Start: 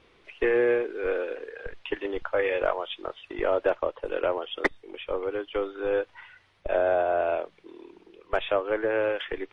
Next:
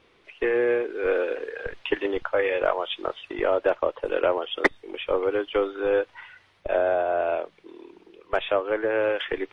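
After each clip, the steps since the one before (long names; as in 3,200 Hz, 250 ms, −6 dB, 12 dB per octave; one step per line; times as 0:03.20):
low-shelf EQ 72 Hz −7 dB
speech leveller within 3 dB 0.5 s
level +3 dB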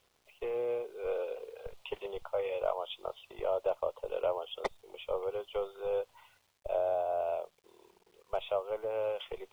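phaser with its sweep stopped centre 710 Hz, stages 4
bit reduction 10 bits
level −7.5 dB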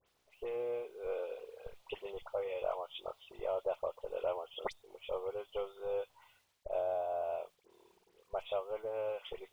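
all-pass dispersion highs, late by 67 ms, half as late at 2,100 Hz
level −4 dB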